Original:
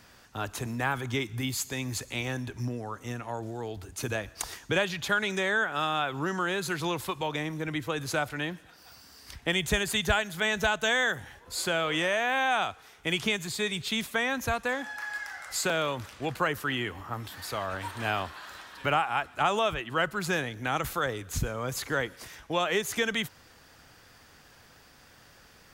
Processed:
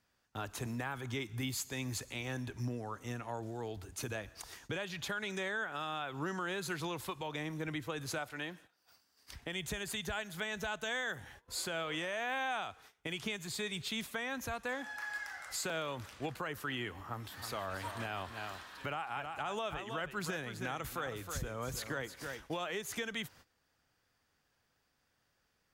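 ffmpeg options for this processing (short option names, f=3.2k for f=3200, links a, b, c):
-filter_complex "[0:a]asettb=1/sr,asplit=3[a][b][c];[a]atrim=end=8.184[d];[b]atrim=start=8.18:end=9.32,asetpts=PTS-STARTPTS,afade=t=in:d=0.004:c=qsin,afade=t=out:st=1.136:d=0.004:c=qsin,lowshelf=f=160:g=-10.5[e];[c]atrim=start=9.316[f];[d][e]acrossfade=d=0.004:c1=hsin:c2=qsin[g];[g][f]acrossfade=d=0.004:c1=qsin:c2=hsin,asettb=1/sr,asplit=3[h][i][j];[h]atrim=end=17.074[k];[i]atrim=start=17.07:end=22.66,asetpts=PTS-STARTPTS,afade=t=in:d=0.004:c=qsin,afade=t=out:st=5.586:d=0.004:c=qsin,aecho=1:1:317:0.316,atrim=end_sample=246519[l];[j]atrim=start=22.656[m];[k][l]acrossfade=d=0.004:c1=hsin:c2=qsin[n];[n][m]acrossfade=d=0.004:c1=qsin:c2=hsin,agate=range=-17dB:threshold=-50dB:ratio=16:detection=peak,alimiter=limit=-23dB:level=0:latency=1:release=242,volume=-5dB"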